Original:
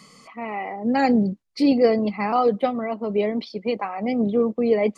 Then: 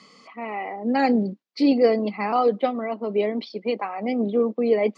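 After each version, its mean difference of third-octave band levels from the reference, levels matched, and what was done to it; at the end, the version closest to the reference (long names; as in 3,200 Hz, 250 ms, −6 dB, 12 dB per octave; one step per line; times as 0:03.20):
1.5 dB: Chebyshev band-pass filter 260–4,600 Hz, order 2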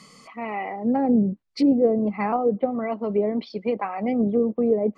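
2.5 dB: treble cut that deepens with the level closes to 540 Hz, closed at −16 dBFS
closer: first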